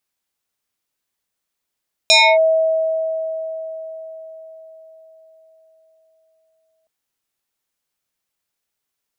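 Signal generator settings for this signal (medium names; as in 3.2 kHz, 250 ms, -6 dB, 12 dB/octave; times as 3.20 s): FM tone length 4.77 s, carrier 643 Hz, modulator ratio 2.4, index 3.9, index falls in 0.28 s linear, decay 4.96 s, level -7 dB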